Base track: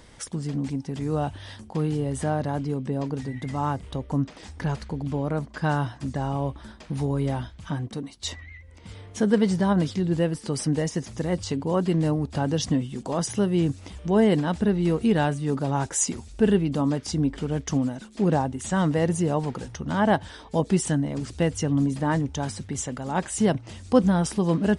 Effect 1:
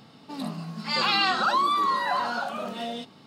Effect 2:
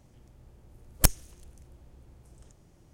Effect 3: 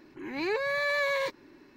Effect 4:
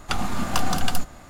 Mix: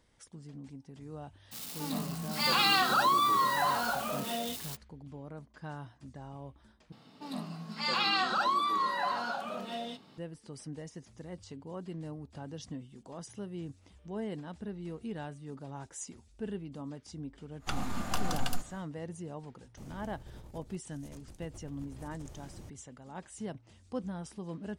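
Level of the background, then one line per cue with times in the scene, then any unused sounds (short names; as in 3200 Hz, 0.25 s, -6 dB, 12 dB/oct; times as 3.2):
base track -18.5 dB
1.51 add 1 -3 dB, fades 0.02 s + switching spikes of -28.5 dBFS
6.92 replace with 1 -4 dB + resonator 63 Hz, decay 0.17 s, mix 40%
17.58 add 4 -9.5 dB, fades 0.10 s
19.77 add 2 -3 dB + negative-ratio compressor -55 dBFS, ratio -0.5
not used: 3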